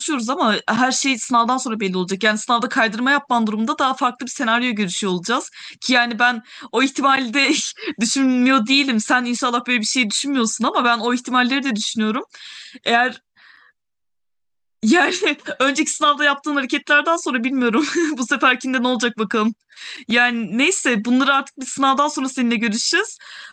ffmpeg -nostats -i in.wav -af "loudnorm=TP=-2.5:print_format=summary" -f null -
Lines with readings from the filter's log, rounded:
Input Integrated:    -18.1 LUFS
Input True Peak:      -3.3 dBTP
Input LRA:             3.7 LU
Input Threshold:     -28.5 LUFS